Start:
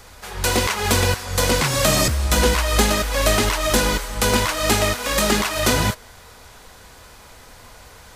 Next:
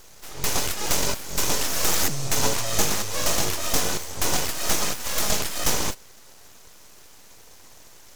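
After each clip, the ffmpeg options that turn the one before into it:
ffmpeg -i in.wav -af "equalizer=frequency=400:width_type=o:width=0.67:gain=6,equalizer=frequency=1600:width_type=o:width=0.67:gain=-6,equalizer=frequency=6300:width_type=o:width=0.67:gain=11,aeval=exprs='abs(val(0))':channel_layout=same,volume=-5dB" out.wav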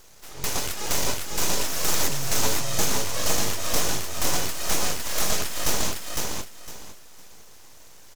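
ffmpeg -i in.wav -af "aecho=1:1:507|1014|1521:0.708|0.17|0.0408,volume=-3dB" out.wav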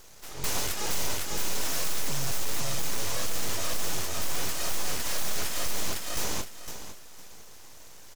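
ffmpeg -i in.wav -af "asoftclip=type=hard:threshold=-20.5dB" out.wav

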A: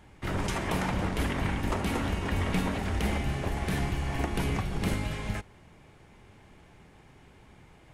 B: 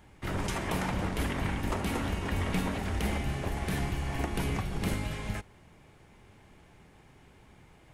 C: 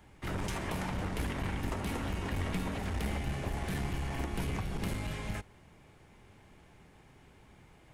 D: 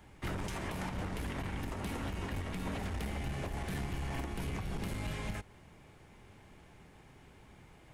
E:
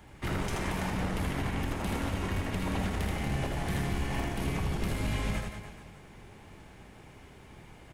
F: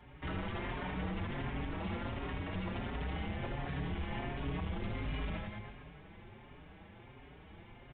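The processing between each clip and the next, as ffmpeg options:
ffmpeg -i in.wav -af "highshelf=frequency=11000:gain=5.5,volume=-2dB" out.wav
ffmpeg -i in.wav -filter_complex "[0:a]acrossover=split=160[link_01][link_02];[link_02]acompressor=threshold=-33dB:ratio=2.5[link_03];[link_01][link_03]amix=inputs=2:normalize=0,aeval=exprs='clip(val(0),-1,0.0282)':channel_layout=same,volume=-1.5dB" out.wav
ffmpeg -i in.wav -af "alimiter=level_in=5dB:limit=-24dB:level=0:latency=1:release=218,volume=-5dB,volume=1dB" out.wav
ffmpeg -i in.wav -af "aecho=1:1:80|176|291.2|429.4|595.3:0.631|0.398|0.251|0.158|0.1,volume=4dB" out.wav
ffmpeg -i in.wav -filter_complex "[0:a]asoftclip=type=tanh:threshold=-30.5dB,aresample=8000,aresample=44100,asplit=2[link_01][link_02];[link_02]adelay=5.2,afreqshift=1.4[link_03];[link_01][link_03]amix=inputs=2:normalize=1" out.wav

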